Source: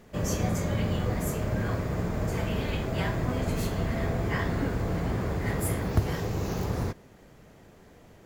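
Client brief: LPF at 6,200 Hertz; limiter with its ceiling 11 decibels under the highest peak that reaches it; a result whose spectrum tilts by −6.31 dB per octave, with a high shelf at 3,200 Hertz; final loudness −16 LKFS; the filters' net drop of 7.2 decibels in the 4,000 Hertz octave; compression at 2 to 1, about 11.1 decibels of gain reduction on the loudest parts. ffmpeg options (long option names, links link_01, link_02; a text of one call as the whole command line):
ffmpeg -i in.wav -af "lowpass=6200,highshelf=frequency=3200:gain=-4.5,equalizer=frequency=4000:width_type=o:gain=-6,acompressor=threshold=-38dB:ratio=2,volume=26dB,alimiter=limit=-7dB:level=0:latency=1" out.wav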